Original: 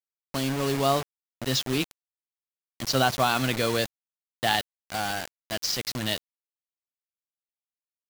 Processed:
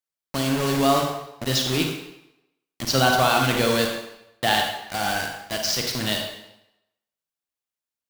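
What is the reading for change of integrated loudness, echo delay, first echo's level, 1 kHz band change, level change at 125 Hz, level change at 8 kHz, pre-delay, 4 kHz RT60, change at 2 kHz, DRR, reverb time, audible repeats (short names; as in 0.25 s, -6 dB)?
+4.5 dB, none, none, +5.0 dB, +4.0 dB, +4.5 dB, 34 ms, 0.75 s, +5.0 dB, 2.0 dB, 0.85 s, none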